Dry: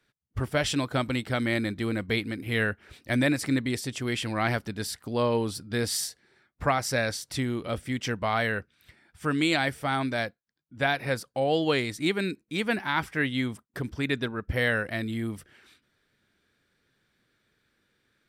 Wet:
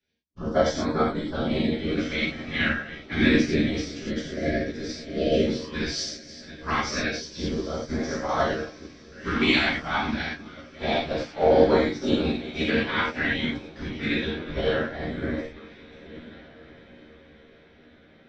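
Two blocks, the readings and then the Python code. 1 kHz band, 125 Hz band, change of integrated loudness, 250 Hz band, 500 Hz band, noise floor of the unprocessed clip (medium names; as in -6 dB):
+1.5 dB, -1.5 dB, +2.5 dB, +3.5 dB, +4.5 dB, -76 dBFS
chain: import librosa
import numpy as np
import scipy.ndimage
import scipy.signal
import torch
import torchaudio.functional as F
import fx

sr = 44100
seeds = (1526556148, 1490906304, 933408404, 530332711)

p1 = fx.reverse_delay(x, sr, ms=681, wet_db=-10.5)
p2 = scipy.signal.sosfilt(scipy.signal.ellip(4, 1.0, 60, 5900.0, 'lowpass', fs=sr, output='sos'), p1)
p3 = fx.peak_eq(p2, sr, hz=100.0, db=-8.0, octaves=0.55)
p4 = fx.whisperise(p3, sr, seeds[0])
p5 = fx.filter_lfo_notch(p4, sr, shape='sine', hz=0.28, low_hz=440.0, high_hz=2900.0, q=0.8)
p6 = fx.rev_gated(p5, sr, seeds[1], gate_ms=130, shape='flat', drr_db=-5.0)
p7 = fx.spec_erase(p6, sr, start_s=3.89, length_s=1.57, low_hz=700.0, high_hz=1600.0)
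p8 = fx.doubler(p7, sr, ms=13.0, db=-3.0)
p9 = p8 + fx.echo_diffused(p8, sr, ms=1625, feedback_pct=46, wet_db=-14.5, dry=0)
y = fx.upward_expand(p9, sr, threshold_db=-34.0, expansion=1.5)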